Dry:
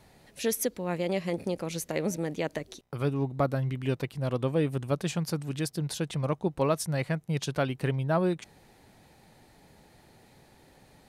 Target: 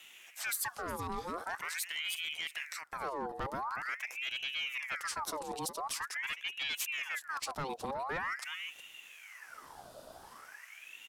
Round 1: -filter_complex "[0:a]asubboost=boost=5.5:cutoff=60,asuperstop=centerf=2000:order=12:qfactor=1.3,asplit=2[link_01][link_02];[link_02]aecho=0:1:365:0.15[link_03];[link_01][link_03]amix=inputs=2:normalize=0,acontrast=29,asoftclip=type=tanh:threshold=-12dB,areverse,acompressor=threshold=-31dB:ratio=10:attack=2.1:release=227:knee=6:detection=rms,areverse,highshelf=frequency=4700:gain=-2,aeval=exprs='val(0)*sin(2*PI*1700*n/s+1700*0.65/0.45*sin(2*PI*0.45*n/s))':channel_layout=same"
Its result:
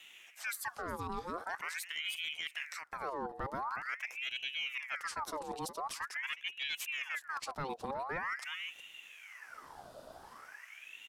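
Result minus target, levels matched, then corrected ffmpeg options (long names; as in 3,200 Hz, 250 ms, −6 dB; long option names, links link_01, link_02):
soft clipping: distortion −12 dB; 8,000 Hz band −4.5 dB
-filter_complex "[0:a]asubboost=boost=5.5:cutoff=60,asuperstop=centerf=2000:order=12:qfactor=1.3,asplit=2[link_01][link_02];[link_02]aecho=0:1:365:0.15[link_03];[link_01][link_03]amix=inputs=2:normalize=0,acontrast=29,asoftclip=type=tanh:threshold=-20.5dB,areverse,acompressor=threshold=-31dB:ratio=10:attack=2.1:release=227:knee=6:detection=rms,areverse,highshelf=frequency=4700:gain=5,aeval=exprs='val(0)*sin(2*PI*1700*n/s+1700*0.65/0.45*sin(2*PI*0.45*n/s))':channel_layout=same"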